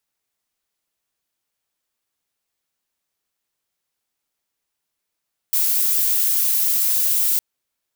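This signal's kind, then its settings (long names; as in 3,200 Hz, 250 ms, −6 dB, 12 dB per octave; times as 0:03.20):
noise violet, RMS −18.5 dBFS 1.86 s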